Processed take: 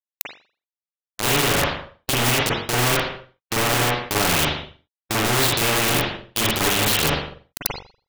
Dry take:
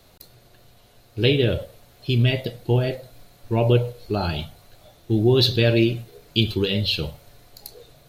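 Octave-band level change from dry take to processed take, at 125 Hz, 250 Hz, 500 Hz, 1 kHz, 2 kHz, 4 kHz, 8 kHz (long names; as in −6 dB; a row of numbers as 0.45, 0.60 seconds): −5.5 dB, −3.0 dB, −2.5 dB, +12.0 dB, +9.0 dB, +3.5 dB, can't be measured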